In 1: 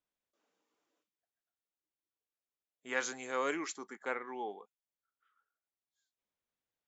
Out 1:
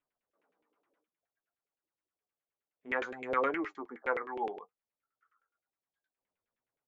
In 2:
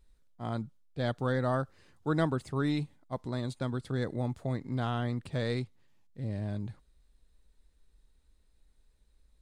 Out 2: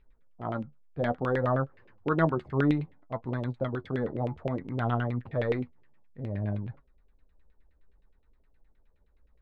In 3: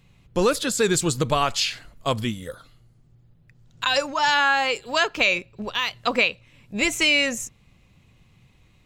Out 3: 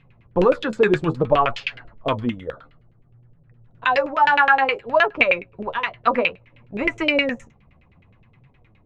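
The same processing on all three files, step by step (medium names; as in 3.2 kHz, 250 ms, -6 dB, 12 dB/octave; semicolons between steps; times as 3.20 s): flange 0.59 Hz, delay 6.9 ms, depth 7.9 ms, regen +49%; LFO low-pass saw down 9.6 Hz 410–2700 Hz; trim +5 dB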